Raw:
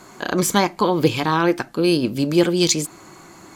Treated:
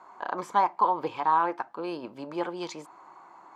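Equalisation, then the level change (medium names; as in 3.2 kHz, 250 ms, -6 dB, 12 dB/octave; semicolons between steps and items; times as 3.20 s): band-pass filter 930 Hz, Q 3.6; +1.5 dB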